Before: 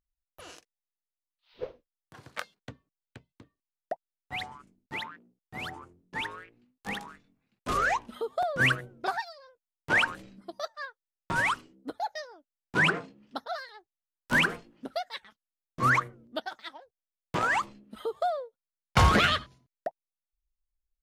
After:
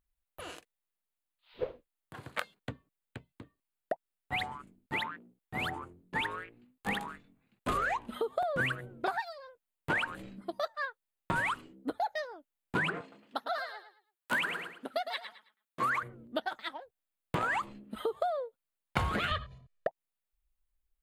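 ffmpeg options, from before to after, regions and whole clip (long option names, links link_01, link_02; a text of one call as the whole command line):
ffmpeg -i in.wav -filter_complex "[0:a]asettb=1/sr,asplit=3[link_01][link_02][link_03];[link_01]atrim=end=13.014[link_04];[link_02]atrim=start=13.01:end=16.03,asetpts=PTS-STARTPTS,afade=type=in:duration=0.004:curve=qsin,afade=type=out:start_time=3.016:duration=0.004:curve=qsin,highpass=frequency=330:poles=1,lowshelf=frequency=460:gain=-5.5,aecho=1:1:108|216|324:0.316|0.0885|0.0248,atrim=end_sample=133182[link_05];[link_03]atrim=start=16.026[link_06];[link_04][link_05]acrossfade=duration=0.004:curve1=hsin:curve2=qsin[link_07];[link_07][link_06]acrossfade=duration=0.004:curve1=qsin:curve2=hsin,asettb=1/sr,asplit=3[link_08][link_09][link_10];[link_08]atrim=end=19.314[link_11];[link_09]atrim=start=19.31:end=19.87,asetpts=PTS-STARTPTS,afade=type=in:duration=0.004:curve=qsin,afade=type=out:start_time=0.556:duration=0.004:curve=qsin,lowpass=5400,lowshelf=frequency=110:gain=10,aecho=1:1:1.7:1,atrim=end_sample=24696[link_12];[link_10]atrim=start=19.866[link_13];[link_11][link_12]acrossfade=duration=0.004:curve1=hsin:curve2=qsin[link_14];[link_14][link_13]acrossfade=duration=0.004:curve1=qsin:curve2=hsin,equalizer=frequency=5600:width_type=o:width=0.52:gain=-13,acompressor=threshold=-32dB:ratio=16,volume=4dB" out.wav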